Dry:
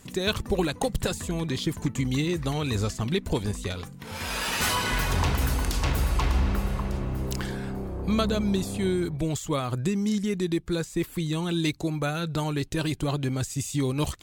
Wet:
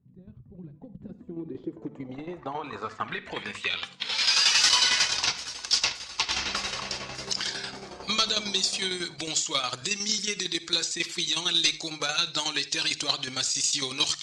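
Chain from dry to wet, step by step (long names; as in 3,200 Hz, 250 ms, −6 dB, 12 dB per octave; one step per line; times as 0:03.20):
spectral magnitudes quantised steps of 15 dB
meter weighting curve ITU-R 468
0:04.69–0:06.29: noise gate −25 dBFS, range −15 dB
mains-hum notches 50/100/150 Hz
in parallel at −2 dB: downward compressor, threshold −33 dBFS, peak gain reduction 17 dB
on the sum: hard clipping −17.5 dBFS, distortion −13 dB
shaped tremolo saw down 11 Hz, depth 65%
on a send at −15.5 dB: convolution reverb, pre-delay 44 ms
on the sum: low-pass filter sweep 130 Hz → 5,300 Hz, 0:00.50–0:04.39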